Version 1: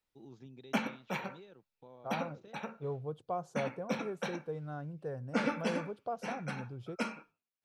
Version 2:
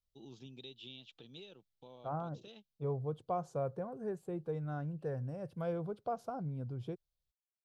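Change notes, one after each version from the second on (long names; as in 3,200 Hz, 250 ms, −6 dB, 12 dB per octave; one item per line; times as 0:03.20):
first voice: add high shelf with overshoot 2,400 Hz +7 dB, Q 3
second voice: add low-shelf EQ 160 Hz +6.5 dB
background: muted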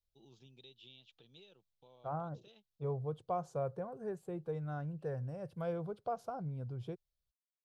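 first voice −6.5 dB
master: add parametric band 260 Hz −6 dB 0.67 octaves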